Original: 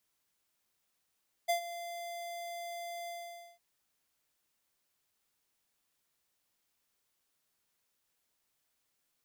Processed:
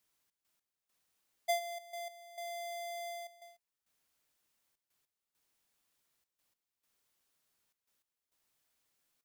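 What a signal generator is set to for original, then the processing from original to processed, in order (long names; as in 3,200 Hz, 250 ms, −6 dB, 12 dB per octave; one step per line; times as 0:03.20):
note with an ADSR envelope square 689 Hz, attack 18 ms, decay 104 ms, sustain −14 dB, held 1.60 s, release 507 ms −28 dBFS
gate pattern "xx.x..xxxx" 101 BPM −12 dB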